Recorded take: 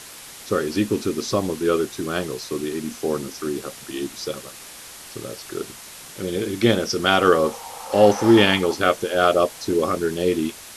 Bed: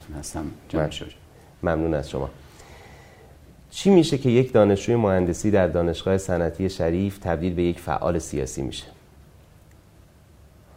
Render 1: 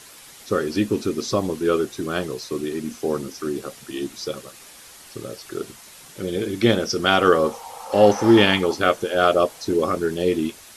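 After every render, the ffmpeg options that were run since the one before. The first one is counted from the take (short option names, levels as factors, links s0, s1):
-af "afftdn=nr=6:nf=-41"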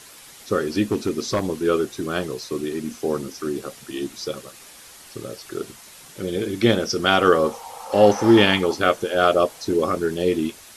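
-filter_complex "[0:a]asettb=1/sr,asplit=3[s0][s1][s2];[s0]atrim=end=0.844[s3];[s1]atrim=start=0.84:end=1.46,asetpts=PTS-STARTPTS,afade=t=in:d=0.004:c=qsin,afade=t=out:st=0.616:d=0.004:c=qsin,aeval=exprs='0.211*(abs(mod(val(0)/0.211+3,4)-2)-1)':c=same[s4];[s2]atrim=start=1.456[s5];[s3][s4]acrossfade=d=0.004:c1=hsin:c2=qsin[s6];[s6][s5]acrossfade=d=0.004:c1=qsin:c2=hsin"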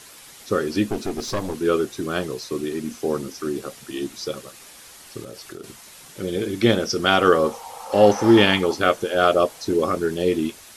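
-filter_complex "[0:a]asettb=1/sr,asplit=3[s0][s1][s2];[s0]atrim=end=0.874[s3];[s1]atrim=start=0.87:end=1.55,asetpts=PTS-STARTPTS,afade=t=in:d=0.004:c=qsin,afade=t=out:st=0.676:d=0.004:c=qsin,aeval=exprs='clip(val(0),-1,0.0335)':c=same[s4];[s2]atrim=start=1.546[s5];[s3][s4]acrossfade=d=0.004:c1=hsin:c2=qsin[s6];[s6][s5]acrossfade=d=0.004:c1=qsin:c2=hsin,asettb=1/sr,asplit=3[s7][s8][s9];[s7]atrim=end=5.224[s10];[s8]atrim=start=5.22:end=5.64,asetpts=PTS-STARTPTS,afade=t=in:d=0.004:c=qsin,afade=t=out:st=0.416:d=0.004:c=qsin,acompressor=threshold=0.0251:ratio=10:attack=3.2:release=140:knee=1:detection=peak[s11];[s9]atrim=start=5.636[s12];[s10][s11]acrossfade=d=0.004:c1=hsin:c2=qsin[s13];[s13][s12]acrossfade=d=0.004:c1=qsin:c2=hsin"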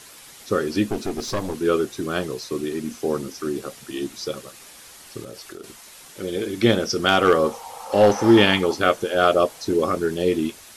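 -filter_complex "[0:a]asettb=1/sr,asplit=3[s0][s1][s2];[s0]atrim=end=5.414[s3];[s1]atrim=start=5.41:end=6.58,asetpts=PTS-STARTPTS,afade=t=in:d=0.004:c=qsin,afade=t=out:st=1.166:d=0.004:c=qsin,equalizer=f=130:w=1:g=-6.5[s4];[s2]atrim=start=6.576[s5];[s3][s4]acrossfade=d=0.004:c1=hsin:c2=qsin[s6];[s6][s5]acrossfade=d=0.004:c1=qsin:c2=hsin,asettb=1/sr,asplit=3[s7][s8][s9];[s7]atrim=end=7.084[s10];[s8]atrim=start=7.08:end=8.16,asetpts=PTS-STARTPTS,afade=t=in:d=0.004:c=qsin,afade=t=out:st=1.076:d=0.004:c=qsin,asoftclip=type=hard:threshold=0.398[s11];[s9]atrim=start=8.156[s12];[s10][s11]acrossfade=d=0.004:c1=hsin:c2=qsin[s13];[s13][s12]acrossfade=d=0.004:c1=qsin:c2=hsin"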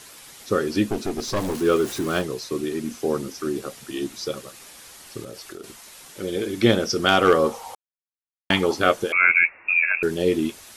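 -filter_complex "[0:a]asettb=1/sr,asplit=3[s0][s1][s2];[s0]atrim=end=1.364[s3];[s1]atrim=start=1.36:end=2.22,asetpts=PTS-STARTPTS,afade=t=in:d=0.004:c=qsin,afade=t=out:st=0.856:d=0.004:c=qsin,aeval=exprs='val(0)+0.5*0.0282*sgn(val(0))':c=same[s4];[s2]atrim=start=2.216[s5];[s3][s4]acrossfade=d=0.004:c1=hsin:c2=qsin[s6];[s6][s5]acrossfade=d=0.004:c1=qsin:c2=hsin,asettb=1/sr,asplit=3[s7][s8][s9];[s7]atrim=end=9.124[s10];[s8]atrim=start=9.12:end=10.03,asetpts=PTS-STARTPTS,afade=t=in:d=0.004:c=qsin,afade=t=out:st=0.906:d=0.004:c=qsin,lowpass=f=2400:t=q:w=0.5098,lowpass=f=2400:t=q:w=0.6013,lowpass=f=2400:t=q:w=0.9,lowpass=f=2400:t=q:w=2.563,afreqshift=-2800[s11];[s9]atrim=start=10.026[s12];[s10][s11]acrossfade=d=0.004:c1=hsin:c2=qsin[s13];[s13][s12]acrossfade=d=0.004:c1=qsin:c2=hsin,asplit=3[s14][s15][s16];[s14]atrim=end=7.75,asetpts=PTS-STARTPTS,afade=t=out:st=7.746:d=0.004:c=hsin[s17];[s15]atrim=start=7.75:end=8.5,asetpts=PTS-STARTPTS,volume=0[s18];[s16]atrim=start=8.5,asetpts=PTS-STARTPTS,afade=t=in:d=0.004:c=hsin[s19];[s17][s18][s19]concat=n=3:v=0:a=1"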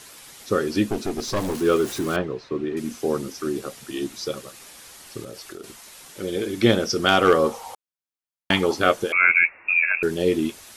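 -filter_complex "[0:a]asettb=1/sr,asplit=3[s0][s1][s2];[s0]atrim=end=2.164[s3];[s1]atrim=start=2.16:end=2.77,asetpts=PTS-STARTPTS,afade=t=in:d=0.004:c=qsin,afade=t=out:st=0.606:d=0.004:c=qsin,lowpass=2300[s4];[s2]atrim=start=2.766[s5];[s3][s4]acrossfade=d=0.004:c1=hsin:c2=qsin[s6];[s6][s5]acrossfade=d=0.004:c1=qsin:c2=hsin"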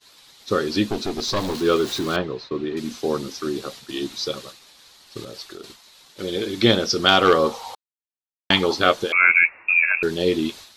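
-af "agate=range=0.0224:threshold=0.0141:ratio=3:detection=peak,equalizer=f=1000:t=o:w=0.67:g=3,equalizer=f=4000:t=o:w=0.67:g=11,equalizer=f=10000:t=o:w=0.67:g=-6"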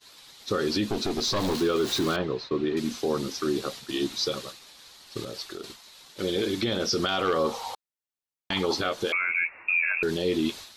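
-af "acompressor=threshold=0.126:ratio=4,alimiter=limit=0.141:level=0:latency=1:release=12"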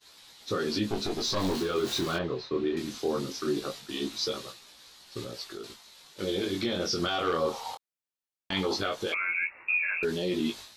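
-af "flanger=delay=16.5:depth=7.4:speed=0.2"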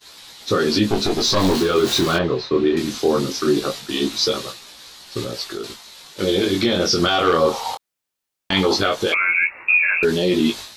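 -af "volume=3.76"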